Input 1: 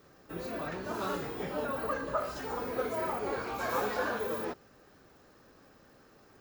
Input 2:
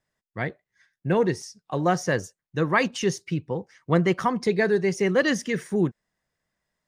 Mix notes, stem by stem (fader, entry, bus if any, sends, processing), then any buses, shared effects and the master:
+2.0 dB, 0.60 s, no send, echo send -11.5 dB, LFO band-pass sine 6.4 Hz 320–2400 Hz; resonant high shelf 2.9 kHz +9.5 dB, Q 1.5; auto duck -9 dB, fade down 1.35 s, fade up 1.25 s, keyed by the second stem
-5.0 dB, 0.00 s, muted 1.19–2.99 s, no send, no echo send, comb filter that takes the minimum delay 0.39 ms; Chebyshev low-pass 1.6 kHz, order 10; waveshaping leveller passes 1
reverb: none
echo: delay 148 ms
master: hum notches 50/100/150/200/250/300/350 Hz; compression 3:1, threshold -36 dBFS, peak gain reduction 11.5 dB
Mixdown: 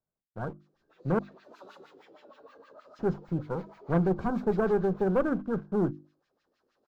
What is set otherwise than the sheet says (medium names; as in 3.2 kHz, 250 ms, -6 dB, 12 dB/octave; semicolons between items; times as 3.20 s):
stem 1 +2.0 dB -> -4.0 dB; master: missing compression 3:1, threshold -36 dBFS, peak gain reduction 11.5 dB